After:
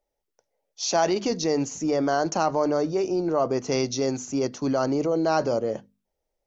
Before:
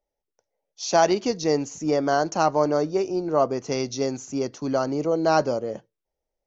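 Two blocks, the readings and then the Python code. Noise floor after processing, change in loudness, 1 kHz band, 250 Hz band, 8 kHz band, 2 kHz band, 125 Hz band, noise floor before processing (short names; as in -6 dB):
-82 dBFS, -1.0 dB, -3.0 dB, +0.5 dB, n/a, -2.0 dB, 0.0 dB, -85 dBFS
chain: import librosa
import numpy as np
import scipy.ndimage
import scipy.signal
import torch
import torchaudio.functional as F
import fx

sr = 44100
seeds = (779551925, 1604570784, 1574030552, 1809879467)

p1 = fx.hum_notches(x, sr, base_hz=50, count=5)
p2 = fx.over_compress(p1, sr, threshold_db=-26.0, ratio=-1.0)
p3 = p1 + (p2 * librosa.db_to_amplitude(0.0))
y = p3 * librosa.db_to_amplitude(-5.0)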